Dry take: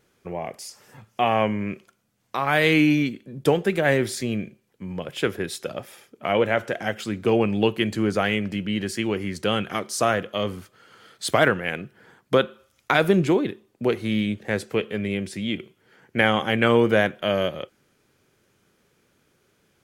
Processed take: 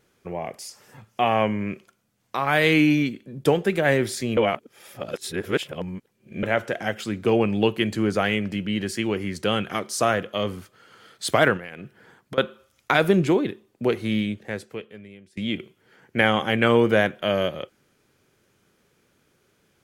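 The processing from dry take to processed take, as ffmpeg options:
-filter_complex "[0:a]asettb=1/sr,asplit=3[s0][s1][s2];[s0]atrim=end=11.574[s3];[s1]atrim=start=11.57:end=12.38,asetpts=PTS-STARTPTS,afade=t=in:d=0.004:c=qsin,afade=t=out:st=0.806:d=0.004:c=qsin,acompressor=threshold=0.0251:ratio=10:attack=3.2:release=140:knee=1:detection=peak[s4];[s2]atrim=start=12.376[s5];[s3][s4]acrossfade=d=0.004:c1=hsin:c2=qsin[s6];[s6][s5]acrossfade=d=0.004:c1=qsin:c2=hsin,asplit=4[s7][s8][s9][s10];[s7]atrim=end=4.372[s11];[s8]atrim=start=4.368:end=6.432,asetpts=PTS-STARTPTS,areverse[s12];[s9]atrim=start=6.428:end=15.37,asetpts=PTS-STARTPTS,afade=t=out:st=7.722:d=1.22:c=qua:silence=0.0794328[s13];[s10]atrim=start=15.37,asetpts=PTS-STARTPTS,afade=t=in:d=0.004:c=hsin:silence=0.0794328[s14];[s11][s12]acrossfade=d=0.004:c1=hsin:c2=hsin[s15];[s13][s14]concat=n=2:v=0:a=1[s16];[s15][s16]acrossfade=d=0.004:c1=hsin:c2=hsin"

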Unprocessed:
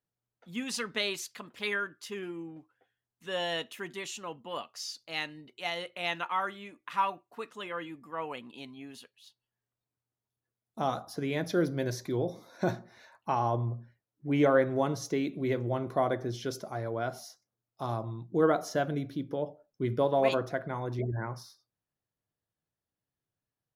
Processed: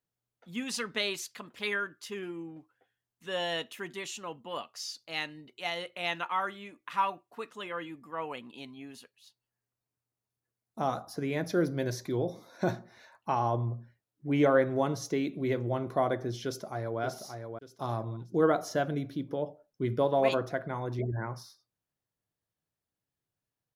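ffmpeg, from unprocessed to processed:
-filter_complex "[0:a]asettb=1/sr,asplit=3[s0][s1][s2];[s0]atrim=end=8.934[s3];[s1]atrim=start=8.93:end=11.75,asetpts=PTS-STARTPTS,afade=t=in:d=0.004:c=qsin,afade=t=out:st=2.816:d=0.004:c=qsin,equalizer=f=3300:t=o:w=0.45:g=-5.5[s4];[s2]atrim=start=11.746[s5];[s3][s4]acrossfade=d=0.004:c1=hsin:c2=qsin[s6];[s6][s5]acrossfade=d=0.004:c1=qsin:c2=hsin,asplit=2[s7][s8];[s8]afade=t=in:st=16.45:d=0.01,afade=t=out:st=17:d=0.01,aecho=0:1:580|1160|1740|2320:0.473151|0.141945|0.0425836|0.0127751[s9];[s7][s9]amix=inputs=2:normalize=0"

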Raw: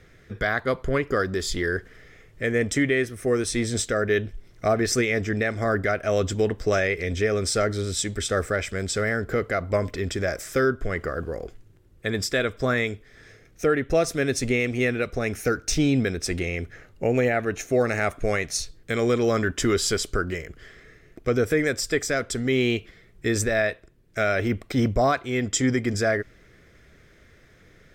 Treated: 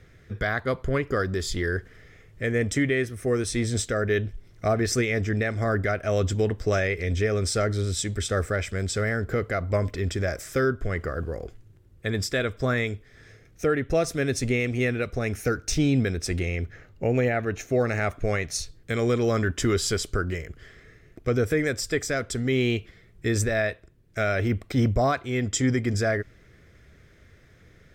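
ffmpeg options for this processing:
-filter_complex "[0:a]asettb=1/sr,asplit=3[s0][s1][s2];[s0]atrim=end=16.564[s3];[s1]atrim=start=16.56:end=18.51,asetpts=PTS-STARTPTS,afade=t=in:d=0.004:c=qsin,afade=t=out:st=1.946:d=0.004:c=qsin,equalizer=f=9900:t=o:w=0.77:g=-7[s4];[s2]atrim=start=18.506[s5];[s3][s4]acrossfade=d=0.004:c1=hsin:c2=qsin[s6];[s6][s5]acrossfade=d=0.004:c1=qsin:c2=hsin,equalizer=f=88:t=o:w=1.6:g=6.5,volume=0.75"

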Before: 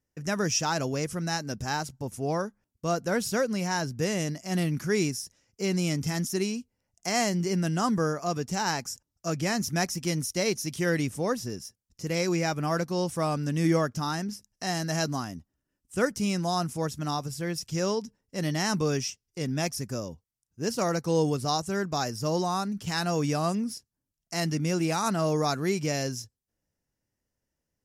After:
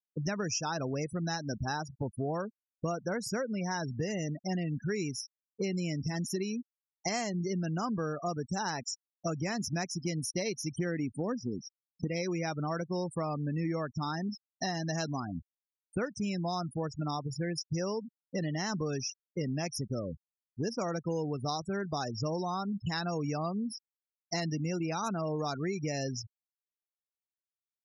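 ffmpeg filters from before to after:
-filter_complex "[0:a]asettb=1/sr,asplit=3[s0][s1][s2];[s0]atrim=end=10.764[s3];[s1]atrim=start=10.76:end=12.08,asetpts=PTS-STARTPTS,afade=t=in:d=0.004:c=qsin,afade=t=out:st=1.316:d=0.004:c=qsin,equalizer=f=250:w=1.5:g=8[s4];[s2]atrim=start=12.076[s5];[s3][s4]acrossfade=d=0.004:c1=hsin:c2=qsin[s6];[s6][s5]acrossfade=d=0.004:c1=qsin:c2=hsin,afftfilt=real='re*gte(hypot(re,im),0.0282)':imag='im*gte(hypot(re,im),0.0282)':win_size=1024:overlap=0.75,acompressor=threshold=0.0126:ratio=6,volume=2.11"

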